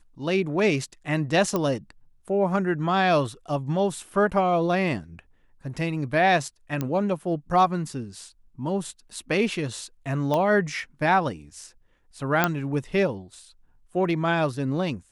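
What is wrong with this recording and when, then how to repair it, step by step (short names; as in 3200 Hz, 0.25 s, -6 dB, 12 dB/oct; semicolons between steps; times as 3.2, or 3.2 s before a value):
1.56 pop -12 dBFS
6.81 pop -14 dBFS
10.34 pop -13 dBFS
12.44 pop -5 dBFS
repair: de-click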